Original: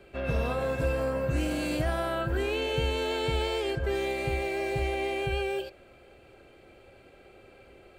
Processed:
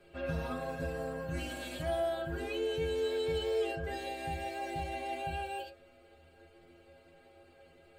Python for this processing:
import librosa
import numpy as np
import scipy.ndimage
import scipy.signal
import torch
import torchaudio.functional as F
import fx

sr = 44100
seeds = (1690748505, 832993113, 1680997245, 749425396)

y = fx.hum_notches(x, sr, base_hz=60, count=9)
y = fx.rider(y, sr, range_db=10, speed_s=0.5)
y = fx.stiff_resonator(y, sr, f0_hz=81.0, decay_s=0.4, stiffness=0.008)
y = y * librosa.db_to_amplitude(3.5)